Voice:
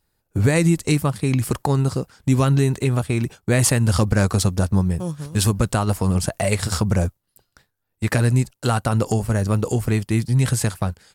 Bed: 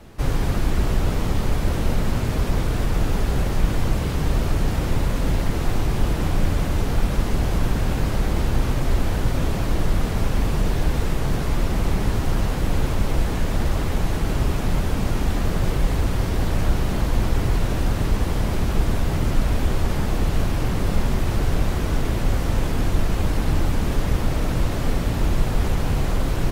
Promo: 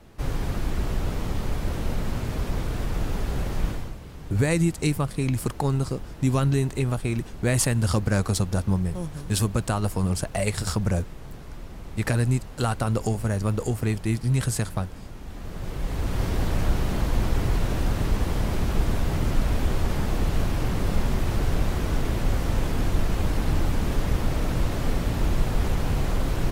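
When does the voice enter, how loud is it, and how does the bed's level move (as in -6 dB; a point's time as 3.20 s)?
3.95 s, -5.0 dB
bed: 3.68 s -6 dB
3.98 s -18 dB
15.21 s -18 dB
16.23 s -3 dB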